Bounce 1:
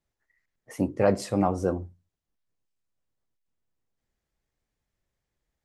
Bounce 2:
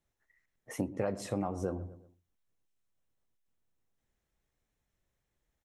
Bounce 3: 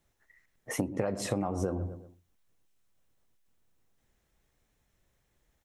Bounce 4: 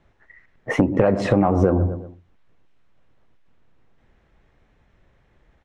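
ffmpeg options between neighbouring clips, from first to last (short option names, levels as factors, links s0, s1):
-filter_complex "[0:a]asplit=2[s0][s1];[s1]adelay=121,lowpass=f=1700:p=1,volume=0.0944,asplit=2[s2][s3];[s3]adelay=121,lowpass=f=1700:p=1,volume=0.38,asplit=2[s4][s5];[s5]adelay=121,lowpass=f=1700:p=1,volume=0.38[s6];[s0][s2][s4][s6]amix=inputs=4:normalize=0,acompressor=threshold=0.0316:ratio=6,bandreject=f=4700:w=8"
-af "acompressor=threshold=0.0178:ratio=6,volume=2.66"
-filter_complex "[0:a]lowpass=2400,asplit=2[s0][s1];[s1]aeval=exprs='0.224*sin(PI/2*2*val(0)/0.224)':c=same,volume=0.531[s2];[s0][s2]amix=inputs=2:normalize=0,volume=2.11"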